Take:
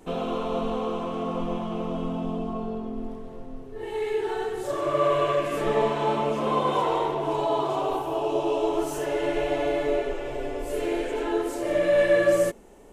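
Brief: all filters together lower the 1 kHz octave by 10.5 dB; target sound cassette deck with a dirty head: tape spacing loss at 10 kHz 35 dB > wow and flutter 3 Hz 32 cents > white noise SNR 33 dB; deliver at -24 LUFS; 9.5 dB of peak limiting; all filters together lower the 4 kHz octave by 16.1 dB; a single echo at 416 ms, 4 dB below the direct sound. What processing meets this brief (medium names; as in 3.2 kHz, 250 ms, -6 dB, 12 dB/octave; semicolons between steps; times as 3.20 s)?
peaking EQ 1 kHz -9 dB; peaking EQ 4 kHz -6.5 dB; peak limiter -22 dBFS; tape spacing loss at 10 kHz 35 dB; delay 416 ms -4 dB; wow and flutter 3 Hz 32 cents; white noise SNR 33 dB; trim +8 dB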